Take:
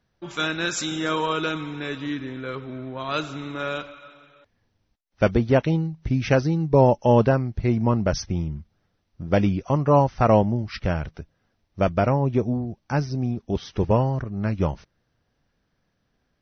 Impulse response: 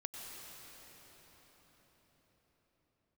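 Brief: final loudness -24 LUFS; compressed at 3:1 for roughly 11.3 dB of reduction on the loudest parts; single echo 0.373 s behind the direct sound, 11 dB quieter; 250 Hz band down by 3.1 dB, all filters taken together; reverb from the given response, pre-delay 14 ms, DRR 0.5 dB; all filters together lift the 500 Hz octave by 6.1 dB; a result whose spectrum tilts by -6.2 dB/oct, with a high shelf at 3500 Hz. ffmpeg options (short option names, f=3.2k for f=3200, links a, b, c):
-filter_complex "[0:a]equalizer=f=250:t=o:g=-7,equalizer=f=500:t=o:g=9,highshelf=f=3.5k:g=-8.5,acompressor=threshold=-24dB:ratio=3,aecho=1:1:373:0.282,asplit=2[a][b];[1:a]atrim=start_sample=2205,adelay=14[c];[b][c]afir=irnorm=-1:irlink=0,volume=0.5dB[d];[a][d]amix=inputs=2:normalize=0,volume=2dB"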